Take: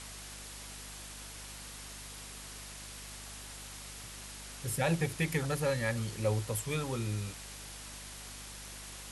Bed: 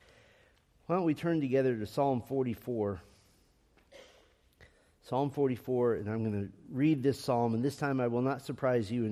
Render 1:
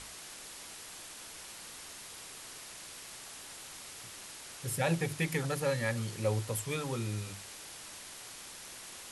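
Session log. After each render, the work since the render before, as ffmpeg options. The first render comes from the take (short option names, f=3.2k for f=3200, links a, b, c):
-af "bandreject=f=50:t=h:w=6,bandreject=f=100:t=h:w=6,bandreject=f=150:t=h:w=6,bandreject=f=200:t=h:w=6,bandreject=f=250:t=h:w=6"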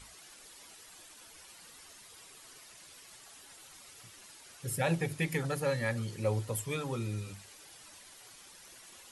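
-af "afftdn=nr=10:nf=-48"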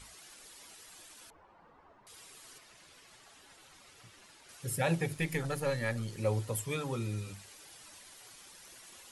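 -filter_complex "[0:a]asettb=1/sr,asplit=3[a][b][c];[a]atrim=end=1.304[d];[b]atrim=start=1.3:end=2.07,asetpts=PTS-STARTPTS,afade=t=in:d=0.004:c=qsin,afade=t=out:st=0.766:d=0.004:c=qsin,lowpass=f=950:t=q:w=1.6[e];[c]atrim=start=2.066[f];[d][e]acrossfade=d=0.004:c1=hsin:c2=qsin[g];[g][f]acrossfade=d=0.004:c1=qsin:c2=hsin,asettb=1/sr,asplit=3[h][i][j];[h]atrim=end=2.584[k];[i]atrim=start=2.58:end=4.49,asetpts=PTS-STARTPTS,afade=t=in:d=0.004:c=qsin,afade=t=out:st=1.906:d=0.004:c=qsin,lowpass=f=3.4k:p=1[l];[j]atrim=start=4.486[m];[k][l]acrossfade=d=0.004:c1=hsin:c2=qsin[n];[n][m]acrossfade=d=0.004:c1=qsin:c2=hsin,asettb=1/sr,asplit=3[o][p][q];[o]atrim=end=5.144[r];[p]atrim=start=5.14:end=6.17,asetpts=PTS-STARTPTS,afade=t=in:d=0.004:c=qsin,afade=t=out:st=1.026:d=0.004:c=qsin,aeval=exprs='if(lt(val(0),0),0.708*val(0),val(0))':c=same[s];[q]atrim=start=6.166[t];[r][s]acrossfade=d=0.004:c1=hsin:c2=qsin[u];[u][t]acrossfade=d=0.004:c1=qsin:c2=hsin"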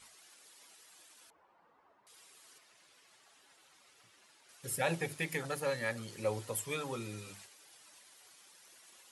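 -af "agate=range=-6dB:threshold=-52dB:ratio=16:detection=peak,highpass=f=350:p=1"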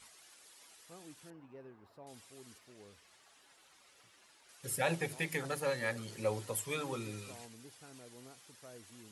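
-filter_complex "[1:a]volume=-24.5dB[a];[0:a][a]amix=inputs=2:normalize=0"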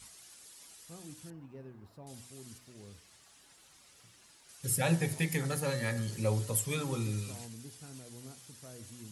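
-af "bass=f=250:g=13,treble=f=4k:g=7,bandreject=f=61.64:t=h:w=4,bandreject=f=123.28:t=h:w=4,bandreject=f=184.92:t=h:w=4,bandreject=f=246.56:t=h:w=4,bandreject=f=308.2:t=h:w=4,bandreject=f=369.84:t=h:w=4,bandreject=f=431.48:t=h:w=4,bandreject=f=493.12:t=h:w=4,bandreject=f=554.76:t=h:w=4,bandreject=f=616.4:t=h:w=4,bandreject=f=678.04:t=h:w=4,bandreject=f=739.68:t=h:w=4,bandreject=f=801.32:t=h:w=4,bandreject=f=862.96:t=h:w=4,bandreject=f=924.6:t=h:w=4,bandreject=f=986.24:t=h:w=4,bandreject=f=1.04788k:t=h:w=4,bandreject=f=1.10952k:t=h:w=4,bandreject=f=1.17116k:t=h:w=4,bandreject=f=1.2328k:t=h:w=4,bandreject=f=1.29444k:t=h:w=4,bandreject=f=1.35608k:t=h:w=4,bandreject=f=1.41772k:t=h:w=4,bandreject=f=1.47936k:t=h:w=4,bandreject=f=1.541k:t=h:w=4,bandreject=f=1.60264k:t=h:w=4,bandreject=f=1.66428k:t=h:w=4,bandreject=f=1.72592k:t=h:w=4,bandreject=f=1.78756k:t=h:w=4,bandreject=f=1.8492k:t=h:w=4,bandreject=f=1.91084k:t=h:w=4,bandreject=f=1.97248k:t=h:w=4,bandreject=f=2.03412k:t=h:w=4,bandreject=f=2.09576k:t=h:w=4,bandreject=f=2.1574k:t=h:w=4,bandreject=f=2.21904k:t=h:w=4,bandreject=f=2.28068k:t=h:w=4"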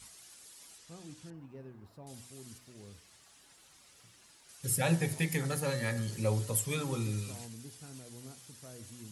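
-filter_complex "[0:a]asettb=1/sr,asplit=3[a][b][c];[a]atrim=end=0.784[d];[b]atrim=start=0.78:end=1.34,asetpts=PTS-STARTPTS,afade=t=in:d=0.004:c=qsin,afade=t=out:st=0.556:d=0.004:c=qsin,lowpass=7.3k[e];[c]atrim=start=1.336[f];[d][e]acrossfade=d=0.004:c1=hsin:c2=qsin[g];[g][f]acrossfade=d=0.004:c1=qsin:c2=hsin"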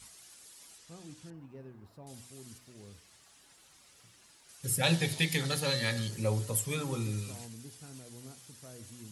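-filter_complex "[0:a]asettb=1/sr,asplit=3[a][b][c];[a]atrim=end=4.834[d];[b]atrim=start=4.83:end=6.08,asetpts=PTS-STARTPTS,afade=t=in:d=0.004:c=qsin,afade=t=out:st=1.246:d=0.004:c=qsin,equalizer=f=3.7k:t=o:w=1:g=13.5[e];[c]atrim=start=6.076[f];[d][e]acrossfade=d=0.004:c1=hsin:c2=qsin[g];[g][f]acrossfade=d=0.004:c1=qsin:c2=hsin"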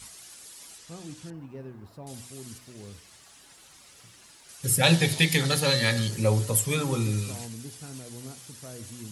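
-af "volume=7.5dB"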